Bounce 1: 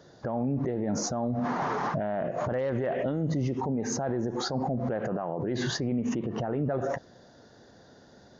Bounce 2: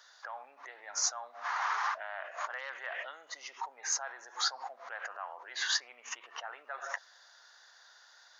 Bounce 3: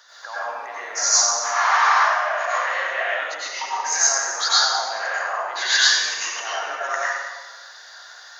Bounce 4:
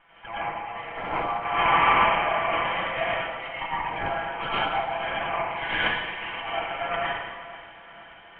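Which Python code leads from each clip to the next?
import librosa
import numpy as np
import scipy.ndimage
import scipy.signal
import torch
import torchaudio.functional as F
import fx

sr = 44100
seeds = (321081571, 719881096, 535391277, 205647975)

y1 = scipy.signal.sosfilt(scipy.signal.butter(4, 1100.0, 'highpass', fs=sr, output='sos'), x)
y1 = F.gain(torch.from_numpy(y1), 3.5).numpy()
y2 = fx.rev_plate(y1, sr, seeds[0], rt60_s=1.3, hf_ratio=0.9, predelay_ms=80, drr_db=-9.5)
y2 = F.gain(torch.from_numpy(y2), 7.0).numpy()
y3 = fx.lower_of_two(y2, sr, delay_ms=6.0)
y3 = scipy.signal.sosfilt(scipy.signal.cheby1(6, 9, 3200.0, 'lowpass', fs=sr, output='sos'), y3)
y3 = fx.echo_feedback(y3, sr, ms=482, feedback_pct=51, wet_db=-16.0)
y3 = F.gain(torch.from_numpy(y3), 3.5).numpy()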